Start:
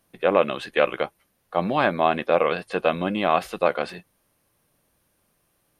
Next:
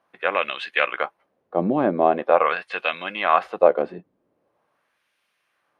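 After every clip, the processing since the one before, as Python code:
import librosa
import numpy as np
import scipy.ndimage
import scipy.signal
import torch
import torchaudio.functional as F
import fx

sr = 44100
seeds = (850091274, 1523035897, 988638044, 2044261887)

y = fx.high_shelf(x, sr, hz=6500.0, db=-4.5)
y = fx.filter_lfo_bandpass(y, sr, shape='sine', hz=0.43, low_hz=300.0, high_hz=2600.0, q=1.3)
y = y * librosa.db_to_amplitude(7.0)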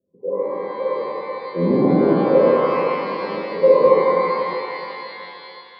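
y = scipy.signal.sosfilt(scipy.signal.cheby1(6, 3, 550.0, 'lowpass', fs=sr, output='sos'), x)
y = fx.rev_shimmer(y, sr, seeds[0], rt60_s=2.9, semitones=12, shimmer_db=-8, drr_db=-8.5)
y = y * librosa.db_to_amplitude(1.0)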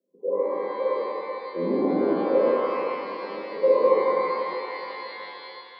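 y = scipy.signal.sosfilt(scipy.signal.butter(4, 230.0, 'highpass', fs=sr, output='sos'), x)
y = fx.rider(y, sr, range_db=5, speed_s=2.0)
y = y * librosa.db_to_amplitude(-7.0)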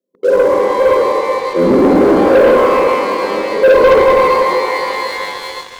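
y = fx.leveller(x, sr, passes=3)
y = y * librosa.db_to_amplitude(5.5)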